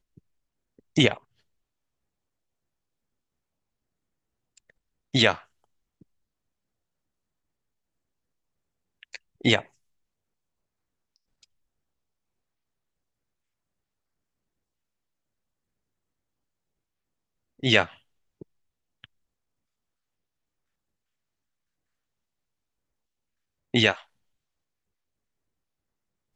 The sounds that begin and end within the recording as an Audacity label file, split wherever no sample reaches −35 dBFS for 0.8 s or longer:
0.960000	1.170000	sound
5.140000	5.380000	sound
9.030000	9.610000	sound
17.630000	19.040000	sound
23.740000	23.980000	sound